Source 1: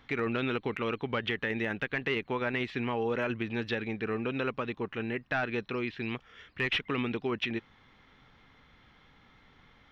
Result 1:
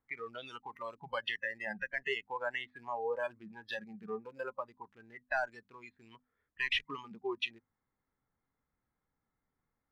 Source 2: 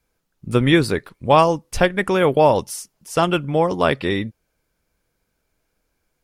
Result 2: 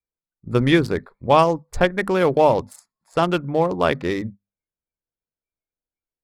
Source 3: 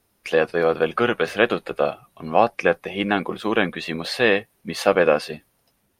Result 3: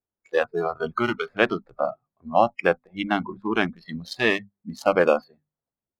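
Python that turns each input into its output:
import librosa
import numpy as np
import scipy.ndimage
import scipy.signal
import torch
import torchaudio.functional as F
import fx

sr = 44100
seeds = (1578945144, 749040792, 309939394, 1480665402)

y = fx.wiener(x, sr, points=15)
y = fx.hum_notches(y, sr, base_hz=50, count=5)
y = fx.noise_reduce_blind(y, sr, reduce_db=23)
y = y * librosa.db_to_amplitude(-1.0)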